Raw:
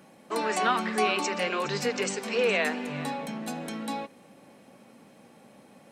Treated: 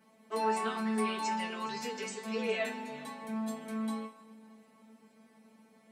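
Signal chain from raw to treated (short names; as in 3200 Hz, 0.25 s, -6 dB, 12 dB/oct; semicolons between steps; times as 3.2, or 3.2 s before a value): resonator 220 Hz, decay 0.2 s, harmonics all, mix 100%; plate-style reverb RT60 2.9 s, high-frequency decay 0.8×, DRR 13.5 dB; gain +2 dB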